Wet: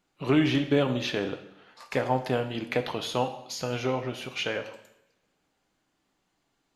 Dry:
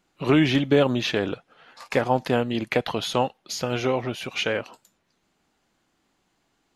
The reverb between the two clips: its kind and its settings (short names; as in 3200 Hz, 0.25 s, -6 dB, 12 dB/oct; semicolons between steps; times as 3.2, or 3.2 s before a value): two-slope reverb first 0.79 s, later 2.2 s, from -28 dB, DRR 7 dB; gain -5.5 dB